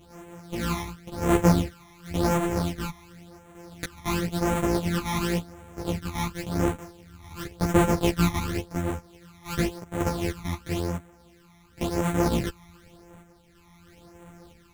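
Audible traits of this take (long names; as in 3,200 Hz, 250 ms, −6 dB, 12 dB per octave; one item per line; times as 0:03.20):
a buzz of ramps at a fixed pitch in blocks of 256 samples
phaser sweep stages 12, 0.93 Hz, lowest notch 480–4,800 Hz
sample-and-hold tremolo 3.1 Hz
a shimmering, thickened sound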